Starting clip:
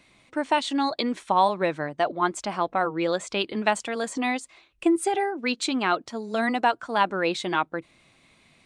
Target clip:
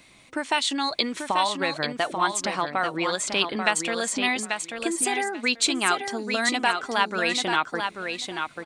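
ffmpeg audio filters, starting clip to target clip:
-filter_complex "[0:a]highshelf=f=5300:g=7.5,acrossover=split=1200[s0][s1];[s0]acompressor=threshold=0.0282:ratio=6[s2];[s2][s1]amix=inputs=2:normalize=0,aecho=1:1:838|1676|2514:0.501|0.0902|0.0162,volume=1.5"

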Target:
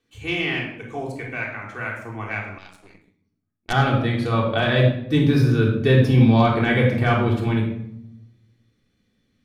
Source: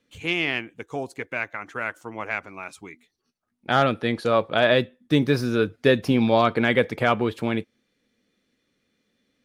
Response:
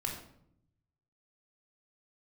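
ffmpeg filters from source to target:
-filter_complex "[1:a]atrim=start_sample=2205,asetrate=38808,aresample=44100[s0];[0:a][s0]afir=irnorm=-1:irlink=0,asubboost=boost=2:cutoff=230,asettb=1/sr,asplit=3[s1][s2][s3];[s1]atrim=end=2.584[s4];[s2]atrim=start=2.58:end=3.73,asetpts=PTS-STARTPTS,afade=t=in:d=0.004:c=qsin,afade=t=out:st=1.146:d=0.004:c=qsin,aeval=exprs='0.355*(cos(1*acos(clip(val(0)/0.355,-1,1)))-cos(1*PI/2))+0.0631*(cos(6*acos(clip(val(0)/0.355,-1,1)))-cos(6*PI/2))+0.0398*(cos(7*acos(clip(val(0)/0.355,-1,1)))-cos(7*PI/2))':c=same[s5];[s3]atrim=start=3.726[s6];[s4][s5]acrossfade=d=0.004:c1=hsin:c2=qsin[s7];[s7][s6]acrossfade=d=0.004:c1=qsin:c2=hsin,volume=0.75"

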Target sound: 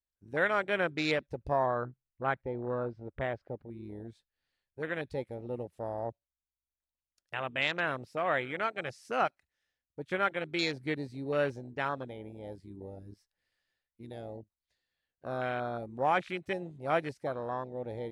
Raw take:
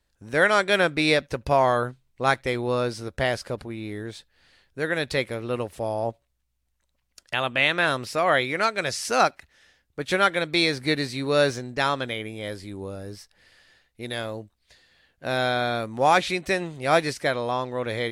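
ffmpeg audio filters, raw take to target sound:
-filter_complex "[0:a]asettb=1/sr,asplit=3[s0][s1][s2];[s0]atrim=end=1.664[s3];[s1]atrim=start=1.66:end=3.66,asetpts=PTS-STARTPTS,afade=t=in:d=0.004:c=qsin,afade=t=out:st=1.996:d=0.004:c=qsin,lowpass=2100[s4];[s2]atrim=start=3.656[s5];[s3][s4]acrossfade=d=0.004:c1=hsin:c2=qsin[s6];[s6][s5]acrossfade=d=0.004:c1=qsin:c2=hsin,afwtdn=0.0501,volume=0.355"

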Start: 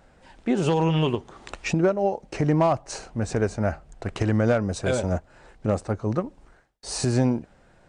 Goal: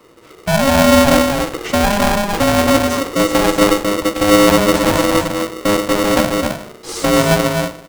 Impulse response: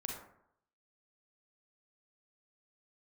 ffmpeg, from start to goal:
-filter_complex "[0:a]equalizer=f=90:w=1.3:g=13,acrossover=split=430[s0][s1];[s0]dynaudnorm=f=120:g=11:m=3.76[s2];[s1]alimiter=limit=0.0891:level=0:latency=1[s3];[s2][s3]amix=inputs=2:normalize=0,acrossover=split=140[s4][s5];[s4]acompressor=threshold=0.0891:ratio=6[s6];[s6][s5]amix=inputs=2:normalize=0,asoftclip=type=tanh:threshold=0.211,aecho=1:1:263:0.668,asplit=2[s7][s8];[1:a]atrim=start_sample=2205[s9];[s8][s9]afir=irnorm=-1:irlink=0,volume=0.891[s10];[s7][s10]amix=inputs=2:normalize=0,aeval=exprs='val(0)*sgn(sin(2*PI*410*n/s))':c=same"

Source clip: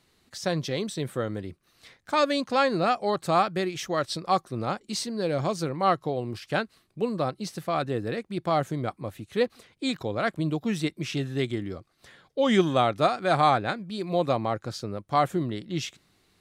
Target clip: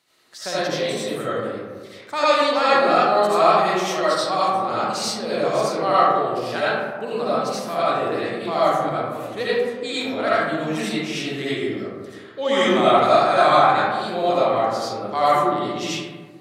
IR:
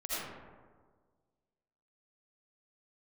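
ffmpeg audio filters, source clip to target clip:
-filter_complex "[0:a]highpass=f=620:p=1[s0];[1:a]atrim=start_sample=2205[s1];[s0][s1]afir=irnorm=-1:irlink=0,volume=1.78"

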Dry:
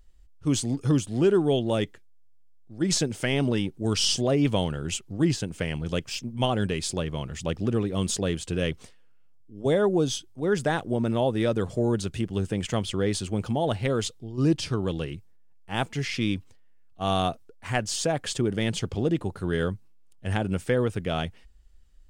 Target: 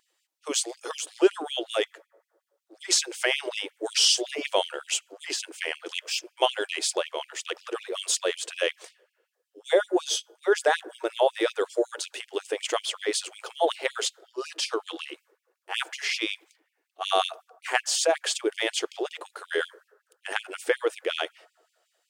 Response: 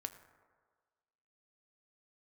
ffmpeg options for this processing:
-filter_complex "[0:a]asplit=2[s0][s1];[1:a]atrim=start_sample=2205,highshelf=f=5400:g=-11[s2];[s1][s2]afir=irnorm=-1:irlink=0,volume=0.299[s3];[s0][s3]amix=inputs=2:normalize=0,afftfilt=real='re*gte(b*sr/1024,300*pow(2300/300,0.5+0.5*sin(2*PI*5.4*pts/sr)))':imag='im*gte(b*sr/1024,300*pow(2300/300,0.5+0.5*sin(2*PI*5.4*pts/sr)))':win_size=1024:overlap=0.75,volume=1.5"

